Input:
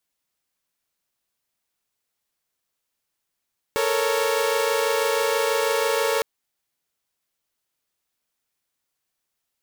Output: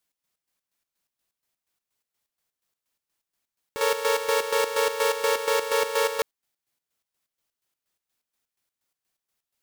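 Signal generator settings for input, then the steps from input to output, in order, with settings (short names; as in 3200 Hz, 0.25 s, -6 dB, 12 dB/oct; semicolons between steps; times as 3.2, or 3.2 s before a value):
chord A4/A#4/C#5 saw, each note -22 dBFS 2.46 s
chopper 4.2 Hz, depth 65%, duty 50%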